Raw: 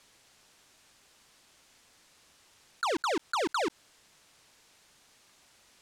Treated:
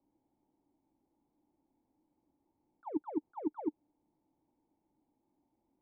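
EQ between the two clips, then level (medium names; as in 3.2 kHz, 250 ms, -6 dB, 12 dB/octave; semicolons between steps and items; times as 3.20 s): cascade formant filter u; band-stop 430 Hz, Q 12; +3.0 dB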